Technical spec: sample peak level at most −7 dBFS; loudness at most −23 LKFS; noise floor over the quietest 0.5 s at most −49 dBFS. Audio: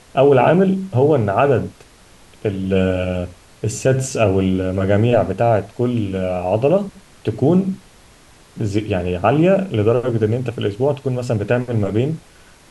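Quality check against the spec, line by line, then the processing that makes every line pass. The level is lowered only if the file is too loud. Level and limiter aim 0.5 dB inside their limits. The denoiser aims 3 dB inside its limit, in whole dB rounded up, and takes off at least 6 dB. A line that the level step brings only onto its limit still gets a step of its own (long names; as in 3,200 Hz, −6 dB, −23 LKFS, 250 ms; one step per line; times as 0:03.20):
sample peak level −4.0 dBFS: out of spec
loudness −18.0 LKFS: out of spec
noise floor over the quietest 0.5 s −47 dBFS: out of spec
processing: level −5.5 dB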